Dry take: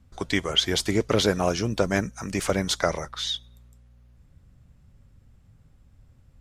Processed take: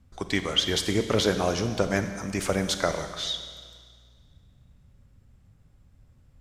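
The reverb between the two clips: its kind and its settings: Schroeder reverb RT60 1.8 s, combs from 31 ms, DRR 8 dB; trim -2 dB

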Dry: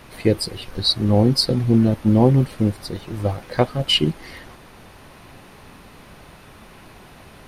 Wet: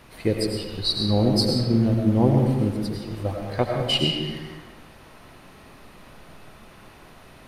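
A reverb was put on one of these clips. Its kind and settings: algorithmic reverb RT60 1.3 s, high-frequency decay 0.7×, pre-delay 60 ms, DRR 1 dB; trim -5.5 dB

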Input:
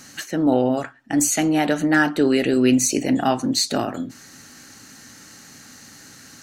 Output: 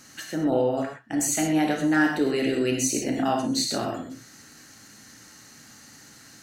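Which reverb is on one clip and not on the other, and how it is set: gated-style reverb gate 150 ms flat, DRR 1 dB; trim -7 dB

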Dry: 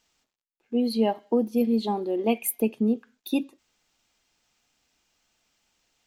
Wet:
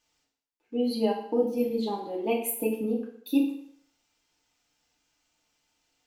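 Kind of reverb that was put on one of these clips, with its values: FDN reverb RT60 0.65 s, low-frequency decay 0.85×, high-frequency decay 0.9×, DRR -2.5 dB; trim -7 dB

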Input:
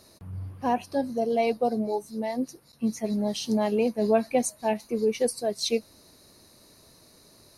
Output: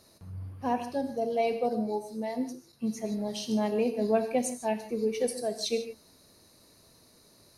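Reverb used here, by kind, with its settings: gated-style reverb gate 180 ms flat, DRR 7.5 dB; trim -4.5 dB

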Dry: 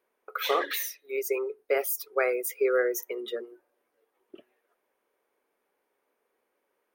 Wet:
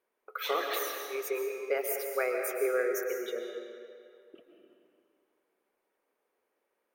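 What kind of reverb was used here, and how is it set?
algorithmic reverb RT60 2.3 s, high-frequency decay 0.8×, pre-delay 90 ms, DRR 2.5 dB; trim -5 dB

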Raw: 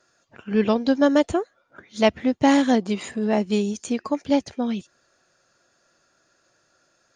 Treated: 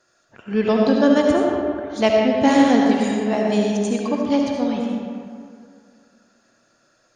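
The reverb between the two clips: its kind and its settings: algorithmic reverb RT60 2.2 s, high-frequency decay 0.55×, pre-delay 35 ms, DRR -1 dB

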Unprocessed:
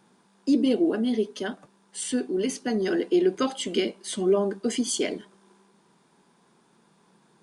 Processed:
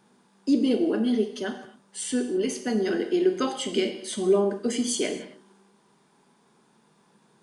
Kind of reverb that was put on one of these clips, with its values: gated-style reverb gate 290 ms falling, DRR 6 dB; trim -1 dB

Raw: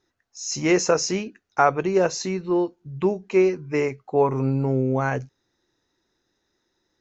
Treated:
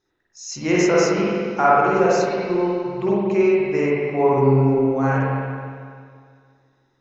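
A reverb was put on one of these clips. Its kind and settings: spring tank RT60 2.1 s, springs 45/55 ms, chirp 55 ms, DRR -7 dB; trim -3.5 dB

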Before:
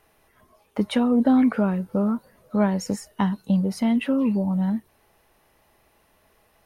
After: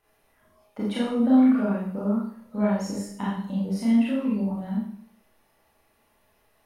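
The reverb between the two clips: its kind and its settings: Schroeder reverb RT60 0.6 s, combs from 27 ms, DRR -6.5 dB; trim -11 dB

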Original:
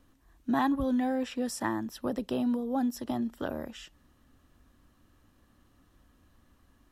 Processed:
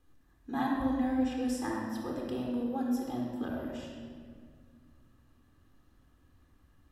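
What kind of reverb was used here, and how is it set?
simulated room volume 3200 m³, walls mixed, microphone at 3.9 m; trim -9 dB

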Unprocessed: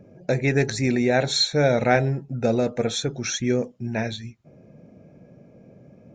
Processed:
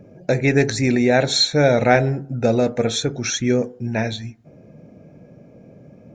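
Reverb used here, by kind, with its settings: FDN reverb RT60 0.62 s, low-frequency decay 1×, high-frequency decay 0.3×, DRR 17 dB; trim +4 dB

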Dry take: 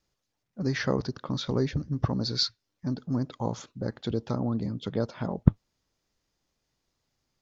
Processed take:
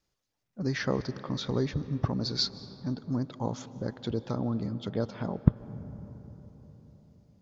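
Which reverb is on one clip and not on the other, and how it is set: algorithmic reverb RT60 4.6 s, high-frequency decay 0.35×, pre-delay 115 ms, DRR 14.5 dB; trim -2 dB

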